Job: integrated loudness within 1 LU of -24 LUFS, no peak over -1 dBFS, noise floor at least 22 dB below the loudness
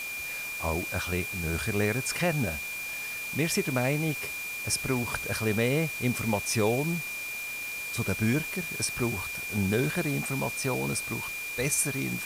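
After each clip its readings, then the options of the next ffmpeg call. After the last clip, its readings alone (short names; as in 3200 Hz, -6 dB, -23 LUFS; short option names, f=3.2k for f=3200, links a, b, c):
steady tone 2400 Hz; tone level -34 dBFS; noise floor -36 dBFS; noise floor target -51 dBFS; loudness -29.0 LUFS; peak -13.0 dBFS; loudness target -24.0 LUFS
-> -af "bandreject=f=2.4k:w=30"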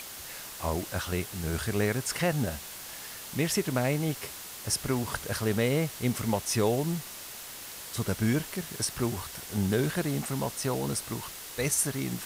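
steady tone none; noise floor -43 dBFS; noise floor target -53 dBFS
-> -af "afftdn=nr=10:nf=-43"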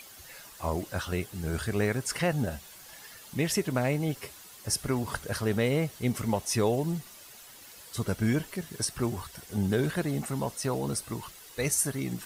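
noise floor -50 dBFS; noise floor target -53 dBFS
-> -af "afftdn=nr=6:nf=-50"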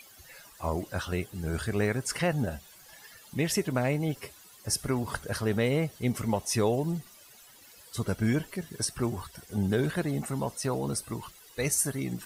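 noise floor -54 dBFS; loudness -30.5 LUFS; peak -13.0 dBFS; loudness target -24.0 LUFS
-> -af "volume=6.5dB"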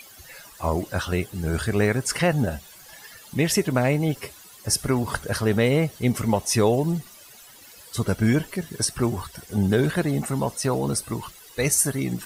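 loudness -24.0 LUFS; peak -6.5 dBFS; noise floor -47 dBFS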